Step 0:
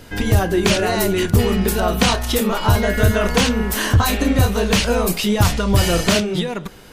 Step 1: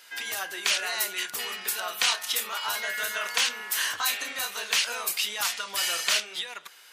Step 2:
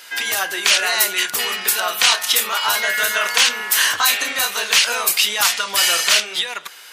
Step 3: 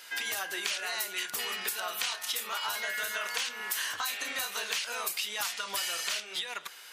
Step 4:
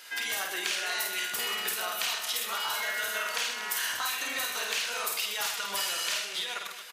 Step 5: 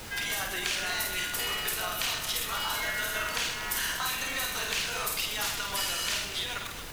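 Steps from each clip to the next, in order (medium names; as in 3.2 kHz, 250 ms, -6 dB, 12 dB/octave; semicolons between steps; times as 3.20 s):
high-pass 1.5 kHz 12 dB/octave; trim -3.5 dB
loudness maximiser +12.5 dB; trim -1 dB
compression, threshold -22 dBFS, peak gain reduction 11.5 dB; trim -8.5 dB
reverse bouncing-ball echo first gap 50 ms, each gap 1.5×, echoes 5
added noise pink -43 dBFS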